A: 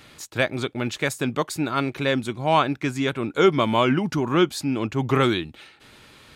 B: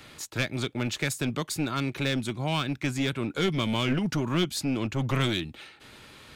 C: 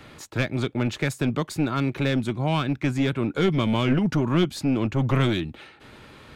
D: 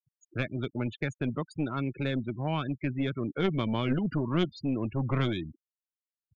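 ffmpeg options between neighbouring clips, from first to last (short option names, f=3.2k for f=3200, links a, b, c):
-filter_complex "[0:a]acrossover=split=260|2000[a][b][c];[b]acompressor=threshold=-32dB:ratio=6[d];[a][d][c]amix=inputs=3:normalize=0,aeval=exprs='clip(val(0),-1,0.0562)':c=same"
-af "highshelf=f=2.6k:g=-11.5,volume=5.5dB"
-af "afftfilt=real='re*gte(hypot(re,im),0.0447)':imag='im*gte(hypot(re,im),0.0447)':win_size=1024:overlap=0.75,aeval=exprs='0.398*(cos(1*acos(clip(val(0)/0.398,-1,1)))-cos(1*PI/2))+0.0447*(cos(3*acos(clip(val(0)/0.398,-1,1)))-cos(3*PI/2))':c=same,volume=-4dB"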